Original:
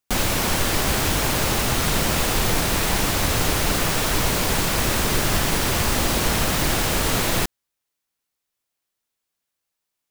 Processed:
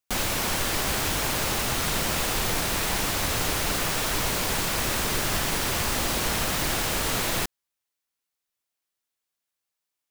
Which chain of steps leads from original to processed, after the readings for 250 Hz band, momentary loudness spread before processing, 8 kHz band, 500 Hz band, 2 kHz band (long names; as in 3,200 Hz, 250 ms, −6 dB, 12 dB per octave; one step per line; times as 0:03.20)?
−7.0 dB, 0 LU, −3.5 dB, −5.5 dB, −4.0 dB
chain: low-shelf EQ 480 Hz −4.5 dB
level −3.5 dB